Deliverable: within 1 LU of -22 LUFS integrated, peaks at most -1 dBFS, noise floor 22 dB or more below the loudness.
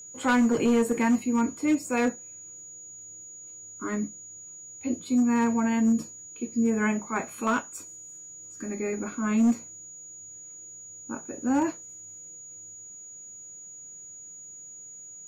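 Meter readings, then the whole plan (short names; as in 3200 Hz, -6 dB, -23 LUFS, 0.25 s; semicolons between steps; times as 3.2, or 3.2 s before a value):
clipped 0.6%; flat tops at -17.0 dBFS; steady tone 6800 Hz; tone level -42 dBFS; loudness -26.5 LUFS; peak -17.0 dBFS; loudness target -22.0 LUFS
-> clip repair -17 dBFS; notch 6800 Hz, Q 30; gain +4.5 dB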